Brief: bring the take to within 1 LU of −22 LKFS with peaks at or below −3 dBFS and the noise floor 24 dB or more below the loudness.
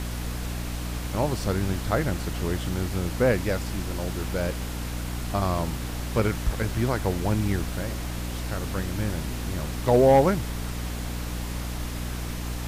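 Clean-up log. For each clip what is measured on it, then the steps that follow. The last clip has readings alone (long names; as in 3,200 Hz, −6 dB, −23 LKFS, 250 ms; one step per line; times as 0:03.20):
mains hum 60 Hz; hum harmonics up to 300 Hz; level of the hum −30 dBFS; background noise floor −32 dBFS; target noise floor −51 dBFS; integrated loudness −27.0 LKFS; sample peak −8.5 dBFS; target loudness −22.0 LKFS
→ hum removal 60 Hz, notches 5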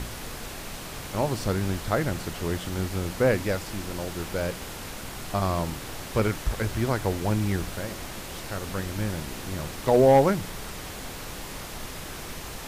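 mains hum none found; background noise floor −38 dBFS; target noise floor −52 dBFS
→ noise reduction from a noise print 14 dB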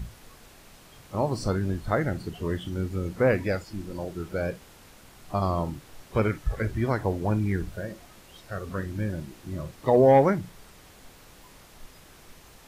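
background noise floor −52 dBFS; integrated loudness −27.0 LKFS; sample peak −9.5 dBFS; target loudness −22.0 LKFS
→ level +5 dB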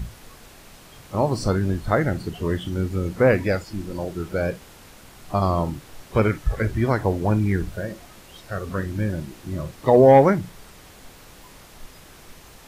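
integrated loudness −22.0 LKFS; sample peak −4.5 dBFS; background noise floor −47 dBFS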